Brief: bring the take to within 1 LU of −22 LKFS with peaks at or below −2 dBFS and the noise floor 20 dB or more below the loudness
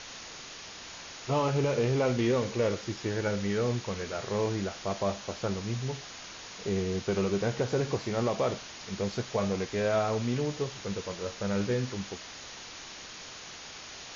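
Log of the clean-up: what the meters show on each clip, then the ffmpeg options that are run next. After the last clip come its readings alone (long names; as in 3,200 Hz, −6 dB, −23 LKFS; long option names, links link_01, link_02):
background noise floor −45 dBFS; target noise floor −51 dBFS; integrated loudness −31.0 LKFS; sample peak −17.0 dBFS; target loudness −22.0 LKFS
→ -af "afftdn=noise_reduction=6:noise_floor=-45"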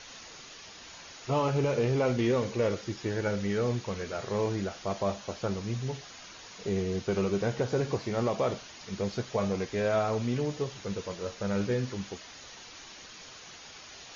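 background noise floor −48 dBFS; target noise floor −51 dBFS
→ -af "afftdn=noise_reduction=6:noise_floor=-48"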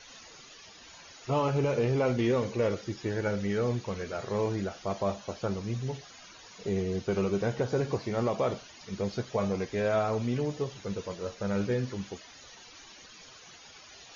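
background noise floor −52 dBFS; integrated loudness −31.0 LKFS; sample peak −17.5 dBFS; target loudness −22.0 LKFS
→ -af "volume=9dB"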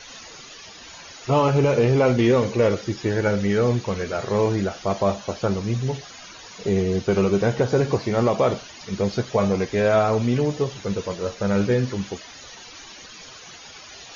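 integrated loudness −22.0 LKFS; sample peak −8.5 dBFS; background noise floor −43 dBFS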